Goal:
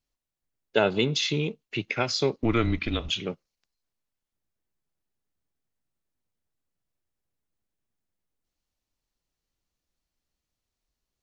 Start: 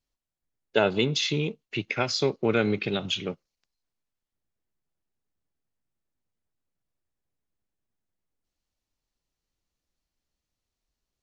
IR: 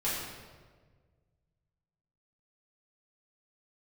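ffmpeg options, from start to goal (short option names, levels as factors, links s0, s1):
-filter_complex "[0:a]asettb=1/sr,asplit=3[s0][s1][s2];[s0]atrim=end=2.384[s3];[s1]atrim=start=2.38:end=3.09,asetpts=PTS-STARTPTS,afade=t=in:d=0.004:c=qsin,afade=t=out:st=0.706:d=0.004:c=qsin,afreqshift=-120[s4];[s2]atrim=start=3.086[s5];[s3][s4]acrossfade=d=0.004:c1=hsin:c2=qsin[s6];[s6][s5]acrossfade=d=0.004:c1=qsin:c2=hsin"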